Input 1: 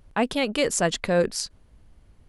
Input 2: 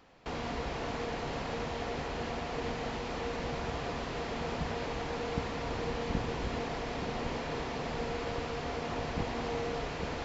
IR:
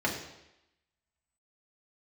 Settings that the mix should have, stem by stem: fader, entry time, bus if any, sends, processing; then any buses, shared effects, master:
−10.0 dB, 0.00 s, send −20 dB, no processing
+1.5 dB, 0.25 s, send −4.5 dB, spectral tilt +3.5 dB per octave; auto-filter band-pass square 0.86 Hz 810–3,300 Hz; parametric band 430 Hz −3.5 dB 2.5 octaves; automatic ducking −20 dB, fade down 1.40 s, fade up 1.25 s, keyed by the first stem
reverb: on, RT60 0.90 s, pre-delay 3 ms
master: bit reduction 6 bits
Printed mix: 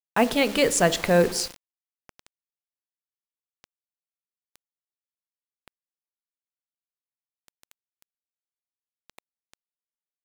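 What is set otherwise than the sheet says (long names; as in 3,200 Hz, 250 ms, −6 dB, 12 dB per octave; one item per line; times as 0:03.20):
stem 1 −10.0 dB → +1.5 dB
stem 2 +1.5 dB → −8.5 dB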